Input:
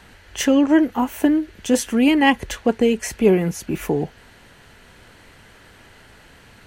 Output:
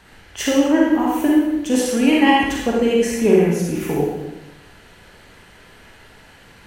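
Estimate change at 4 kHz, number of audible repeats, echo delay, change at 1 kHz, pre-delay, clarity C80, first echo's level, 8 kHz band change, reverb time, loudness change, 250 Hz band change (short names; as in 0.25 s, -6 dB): +2.0 dB, none, none, +3.0 dB, 35 ms, 2.5 dB, none, +1.0 dB, 1.0 s, +1.5 dB, +1.5 dB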